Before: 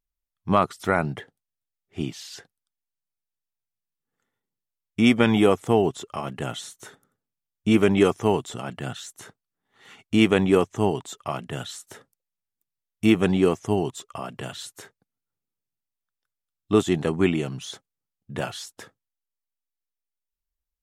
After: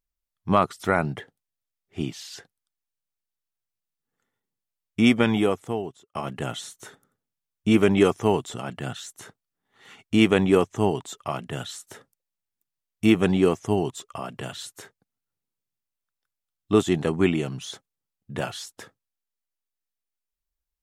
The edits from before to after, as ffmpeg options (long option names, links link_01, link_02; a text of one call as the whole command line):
ffmpeg -i in.wav -filter_complex "[0:a]asplit=2[link_01][link_02];[link_01]atrim=end=6.15,asetpts=PTS-STARTPTS,afade=type=out:start_time=5.04:duration=1.11[link_03];[link_02]atrim=start=6.15,asetpts=PTS-STARTPTS,afade=type=in:duration=0.004:curve=hsin[link_04];[link_03][link_04]concat=n=2:v=0:a=1" out.wav